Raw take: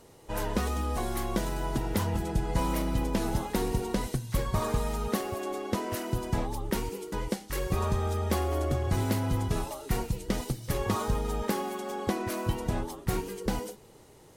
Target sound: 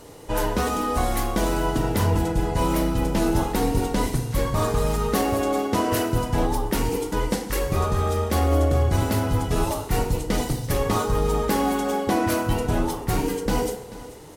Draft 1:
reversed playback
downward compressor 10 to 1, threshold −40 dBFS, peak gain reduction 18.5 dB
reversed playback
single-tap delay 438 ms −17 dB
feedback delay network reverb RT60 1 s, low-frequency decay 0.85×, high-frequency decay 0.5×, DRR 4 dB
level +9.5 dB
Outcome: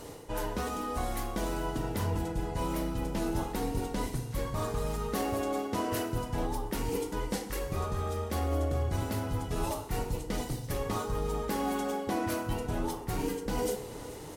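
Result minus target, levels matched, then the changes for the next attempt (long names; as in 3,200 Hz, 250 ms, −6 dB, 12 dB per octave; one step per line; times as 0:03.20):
downward compressor: peak gain reduction +10.5 dB
change: downward compressor 10 to 1, threshold −28.5 dBFS, peak gain reduction 8 dB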